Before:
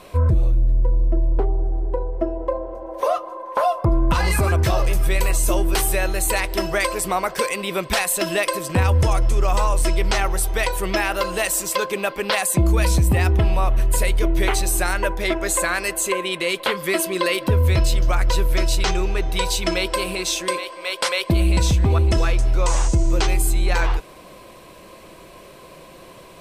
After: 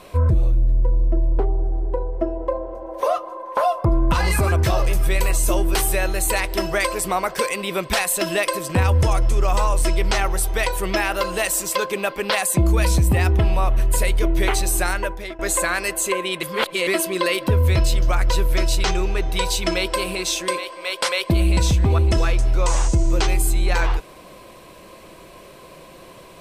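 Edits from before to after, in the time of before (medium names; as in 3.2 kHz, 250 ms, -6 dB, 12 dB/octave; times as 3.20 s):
14.88–15.39 s: fade out, to -19 dB
16.43–16.87 s: reverse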